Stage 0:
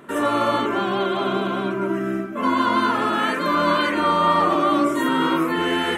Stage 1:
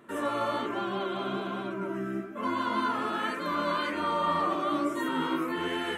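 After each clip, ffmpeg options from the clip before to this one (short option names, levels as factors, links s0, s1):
-af "flanger=delay=8.6:depth=7.4:regen=46:speed=1.2:shape=sinusoidal,volume=0.501"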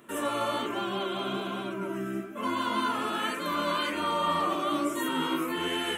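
-af "aexciter=amount=2.2:drive=3:freq=2500"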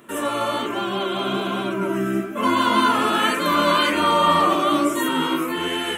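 -af "dynaudnorm=f=320:g=9:m=1.78,volume=2"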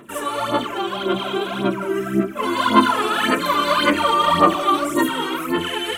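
-af "aphaser=in_gain=1:out_gain=1:delay=2.6:decay=0.68:speed=1.8:type=sinusoidal,volume=0.75"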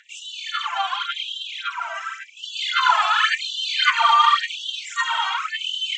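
-af "aresample=16000,aresample=44100,afftfilt=real='re*gte(b*sr/1024,620*pow(2800/620,0.5+0.5*sin(2*PI*0.91*pts/sr)))':imag='im*gte(b*sr/1024,620*pow(2800/620,0.5+0.5*sin(2*PI*0.91*pts/sr)))':win_size=1024:overlap=0.75,volume=1.41"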